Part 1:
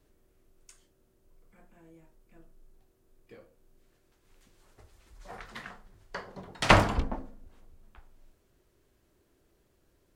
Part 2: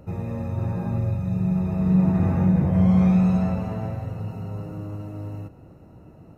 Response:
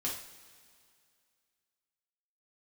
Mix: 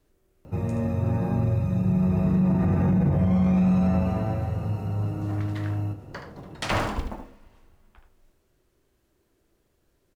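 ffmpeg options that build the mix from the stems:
-filter_complex "[0:a]acrusher=bits=8:mode=log:mix=0:aa=0.000001,volume=-1.5dB,asplit=3[link_01][link_02][link_03];[link_02]volume=-16.5dB[link_04];[link_03]volume=-7.5dB[link_05];[1:a]adelay=450,volume=-0.5dB,asplit=2[link_06][link_07];[link_07]volume=-7dB[link_08];[2:a]atrim=start_sample=2205[link_09];[link_04][link_08]amix=inputs=2:normalize=0[link_10];[link_10][link_09]afir=irnorm=-1:irlink=0[link_11];[link_05]aecho=0:1:76:1[link_12];[link_01][link_06][link_11][link_12]amix=inputs=4:normalize=0,alimiter=limit=-15dB:level=0:latency=1:release=27"

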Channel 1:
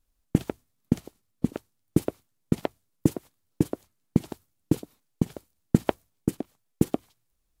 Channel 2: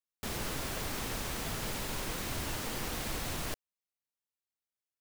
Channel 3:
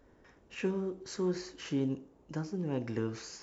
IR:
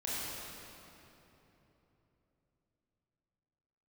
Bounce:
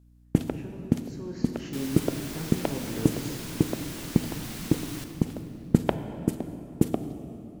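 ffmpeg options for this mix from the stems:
-filter_complex "[0:a]volume=-1.5dB,asplit=2[link_01][link_02];[link_02]volume=-12.5dB[link_03];[1:a]tiltshelf=frequency=1400:gain=-4,adelay=1500,volume=-7dB,asplit=2[link_04][link_05];[link_05]volume=-7.5dB[link_06];[2:a]agate=range=-18dB:threshold=-52dB:ratio=16:detection=peak,volume=-5.5dB,afade=type=in:start_time=1.1:duration=0.48:silence=0.334965,asplit=2[link_07][link_08];[link_08]volume=-4dB[link_09];[3:a]atrim=start_sample=2205[link_10];[link_03][link_06][link_09]amix=inputs=3:normalize=0[link_11];[link_11][link_10]afir=irnorm=-1:irlink=0[link_12];[link_01][link_04][link_07][link_12]amix=inputs=4:normalize=0,aeval=exprs='val(0)+0.00178*(sin(2*PI*60*n/s)+sin(2*PI*2*60*n/s)/2+sin(2*PI*3*60*n/s)/3+sin(2*PI*4*60*n/s)/4+sin(2*PI*5*60*n/s)/5)':channel_layout=same"

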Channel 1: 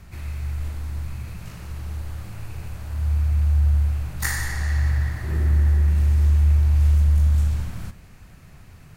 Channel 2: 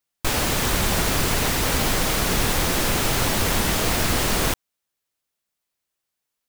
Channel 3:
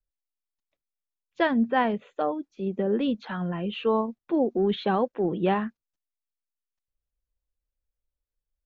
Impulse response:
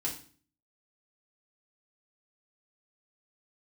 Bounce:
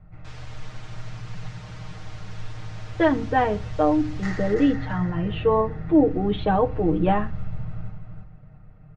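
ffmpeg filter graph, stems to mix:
-filter_complex "[0:a]adynamicsmooth=sensitivity=7:basefreq=1400,aecho=1:1:1.5:0.42,volume=-6dB,asplit=2[link_01][link_02];[link_02]volume=-5dB[link_03];[1:a]highpass=frequency=1300:poles=1,volume=-17.5dB[link_04];[2:a]adelay=1600,volume=1dB,asplit=2[link_05][link_06];[link_06]volume=-13dB[link_07];[3:a]atrim=start_sample=2205[link_08];[link_07][link_08]afir=irnorm=-1:irlink=0[link_09];[link_03]aecho=0:1:333|666|999|1332:1|0.24|0.0576|0.0138[link_10];[link_01][link_04][link_05][link_09][link_10]amix=inputs=5:normalize=0,lowpass=frequency=6500:width=0.5412,lowpass=frequency=6500:width=1.3066,highshelf=frequency=2400:gain=-11,aecho=1:1:6.5:0.89"

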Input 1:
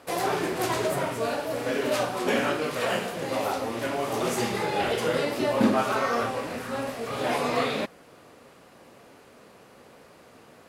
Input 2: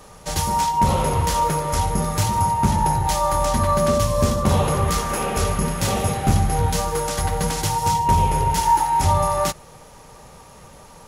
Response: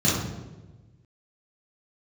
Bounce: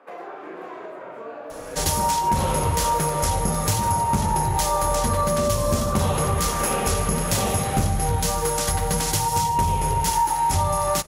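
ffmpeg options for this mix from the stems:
-filter_complex "[0:a]highpass=210,acrossover=split=390 2400:gain=0.0891 1 0.0631[link_01][link_02][link_03];[link_01][link_02][link_03]amix=inputs=3:normalize=0,acompressor=threshold=-37dB:ratio=12,volume=0dB,asplit=2[link_04][link_05];[link_05]volume=-14.5dB[link_06];[1:a]highshelf=frequency=6000:gain=6.5,acompressor=threshold=-20dB:ratio=3,adelay=1500,volume=1dB[link_07];[2:a]atrim=start_sample=2205[link_08];[link_06][link_08]afir=irnorm=-1:irlink=0[link_09];[link_04][link_07][link_09]amix=inputs=3:normalize=0"

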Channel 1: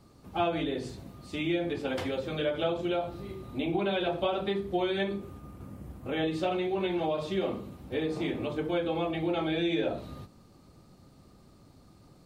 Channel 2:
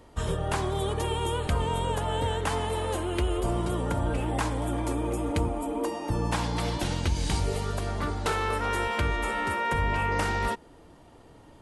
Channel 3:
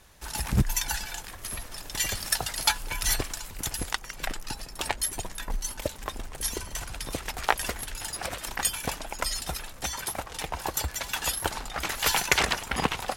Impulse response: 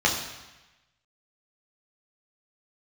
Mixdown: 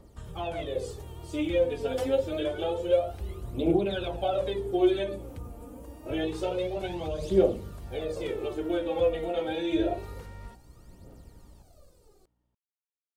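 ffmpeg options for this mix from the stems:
-filter_complex "[0:a]equalizer=frequency=125:width_type=o:width=1:gain=-11,equalizer=frequency=250:width_type=o:width=1:gain=-9,equalizer=frequency=500:width_type=o:width=1:gain=4,equalizer=frequency=1000:width_type=o:width=1:gain=-10,equalizer=frequency=2000:width_type=o:width=1:gain=-9,equalizer=frequency=4000:width_type=o:width=1:gain=-7,dynaudnorm=framelen=120:gausssize=9:maxgain=4dB,aphaser=in_gain=1:out_gain=1:delay=4.4:decay=0.74:speed=0.27:type=triangular,volume=-1dB[link_01];[1:a]acrossover=split=190[link_02][link_03];[link_03]acompressor=threshold=-42dB:ratio=3[link_04];[link_02][link_04]amix=inputs=2:normalize=0,aeval=exprs='val(0)+0.00562*(sin(2*PI*60*n/s)+sin(2*PI*2*60*n/s)/2+sin(2*PI*3*60*n/s)/3+sin(2*PI*4*60*n/s)/4+sin(2*PI*5*60*n/s)/5)':channel_layout=same,volume=-11.5dB,asplit=2[link_05][link_06];[link_06]volume=-19.5dB,aecho=0:1:926:1[link_07];[link_01][link_05][link_07]amix=inputs=3:normalize=0"

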